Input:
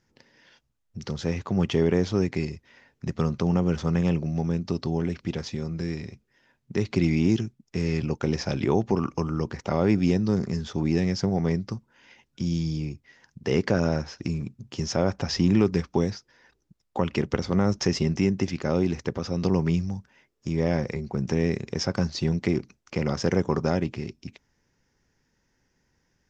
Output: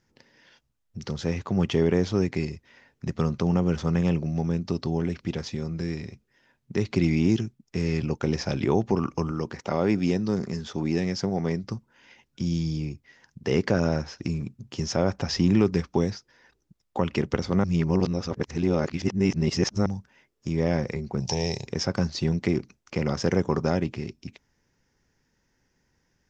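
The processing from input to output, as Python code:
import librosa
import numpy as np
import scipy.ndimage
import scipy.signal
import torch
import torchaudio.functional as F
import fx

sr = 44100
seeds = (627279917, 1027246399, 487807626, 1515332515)

y = fx.low_shelf(x, sr, hz=100.0, db=-11.5, at=(9.31, 11.64))
y = fx.curve_eq(y, sr, hz=(130.0, 260.0, 890.0, 1300.0, 5000.0, 7500.0), db=(0, -12, 10, -13, 15, 7), at=(21.2, 21.67))
y = fx.edit(y, sr, fx.reverse_span(start_s=17.64, length_s=2.22), tone=tone)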